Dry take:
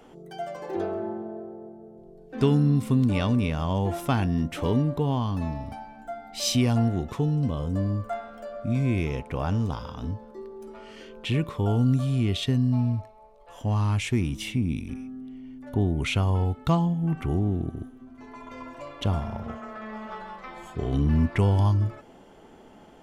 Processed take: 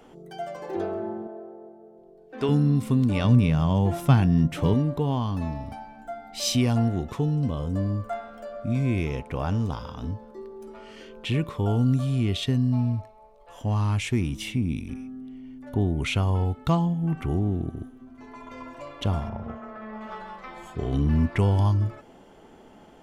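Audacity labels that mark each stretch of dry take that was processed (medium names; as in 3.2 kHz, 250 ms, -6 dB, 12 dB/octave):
1.270000	2.490000	tone controls bass -13 dB, treble -5 dB
3.240000	4.740000	peaking EQ 140 Hz +11.5 dB
19.290000	20.010000	low-pass 1.6 kHz 6 dB/octave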